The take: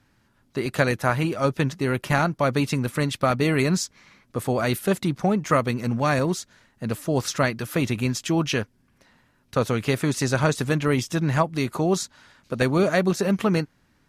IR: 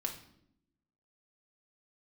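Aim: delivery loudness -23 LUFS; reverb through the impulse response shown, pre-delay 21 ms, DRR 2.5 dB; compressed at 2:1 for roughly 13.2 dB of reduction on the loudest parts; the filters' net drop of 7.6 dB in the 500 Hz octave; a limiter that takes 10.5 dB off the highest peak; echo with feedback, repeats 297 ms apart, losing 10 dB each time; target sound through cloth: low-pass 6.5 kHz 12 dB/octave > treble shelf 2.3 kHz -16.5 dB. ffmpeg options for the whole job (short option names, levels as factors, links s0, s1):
-filter_complex "[0:a]equalizer=f=500:t=o:g=-9,acompressor=threshold=0.00631:ratio=2,alimiter=level_in=2.82:limit=0.0631:level=0:latency=1,volume=0.355,aecho=1:1:297|594|891|1188:0.316|0.101|0.0324|0.0104,asplit=2[s0][s1];[1:a]atrim=start_sample=2205,adelay=21[s2];[s1][s2]afir=irnorm=-1:irlink=0,volume=0.631[s3];[s0][s3]amix=inputs=2:normalize=0,lowpass=6500,highshelf=f=2300:g=-16.5,volume=8.91"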